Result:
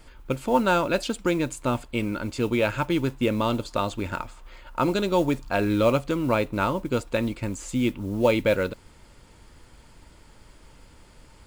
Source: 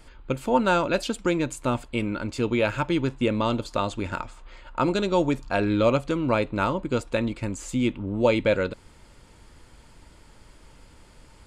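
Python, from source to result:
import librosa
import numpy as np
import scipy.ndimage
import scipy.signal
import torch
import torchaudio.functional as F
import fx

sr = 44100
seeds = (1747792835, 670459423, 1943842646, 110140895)

y = fx.mod_noise(x, sr, seeds[0], snr_db=28)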